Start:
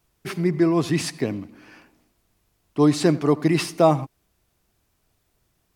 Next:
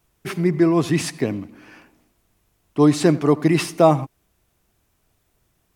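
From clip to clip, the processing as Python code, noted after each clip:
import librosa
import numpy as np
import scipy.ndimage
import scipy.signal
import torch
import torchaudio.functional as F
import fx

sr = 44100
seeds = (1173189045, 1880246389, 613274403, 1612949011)

y = fx.peak_eq(x, sr, hz=4600.0, db=-3.5, octaves=0.49)
y = F.gain(torch.from_numpy(y), 2.5).numpy()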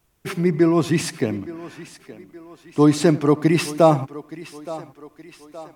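y = fx.echo_thinned(x, sr, ms=870, feedback_pct=52, hz=240.0, wet_db=-16.0)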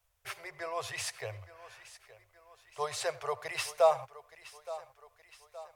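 y = scipy.signal.sosfilt(scipy.signal.ellip(3, 1.0, 50, [100.0, 530.0], 'bandstop', fs=sr, output='sos'), x)
y = F.gain(torch.from_numpy(y), -8.5).numpy()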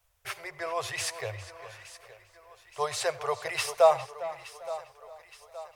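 y = fx.echo_tape(x, sr, ms=401, feedback_pct=34, wet_db=-12.5, lp_hz=4200.0, drive_db=20.0, wow_cents=38)
y = F.gain(torch.from_numpy(y), 4.5).numpy()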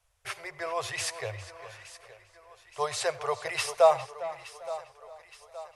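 y = fx.brickwall_lowpass(x, sr, high_hz=12000.0)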